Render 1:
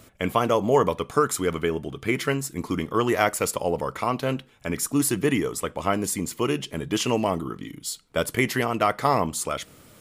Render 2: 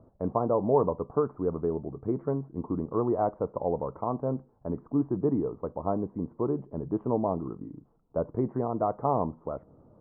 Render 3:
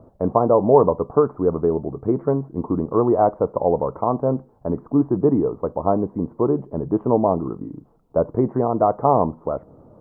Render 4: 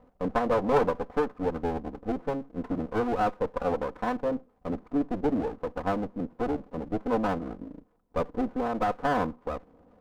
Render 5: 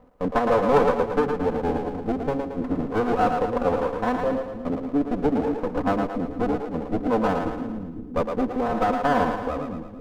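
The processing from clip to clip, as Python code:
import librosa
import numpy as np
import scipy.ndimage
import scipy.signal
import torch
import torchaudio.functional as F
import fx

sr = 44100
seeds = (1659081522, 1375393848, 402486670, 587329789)

y1 = scipy.signal.sosfilt(scipy.signal.butter(6, 1000.0, 'lowpass', fs=sr, output='sos'), x)
y1 = y1 * librosa.db_to_amplitude(-3.5)
y2 = fx.peak_eq(y1, sr, hz=630.0, db=3.0, octaves=2.0)
y2 = y2 * librosa.db_to_amplitude(7.5)
y3 = fx.lower_of_two(y2, sr, delay_ms=4.0)
y3 = y3 * librosa.db_to_amplitude(-8.5)
y4 = fx.echo_split(y3, sr, split_hz=340.0, low_ms=519, high_ms=112, feedback_pct=52, wet_db=-5.0)
y4 = y4 * librosa.db_to_amplitude(4.0)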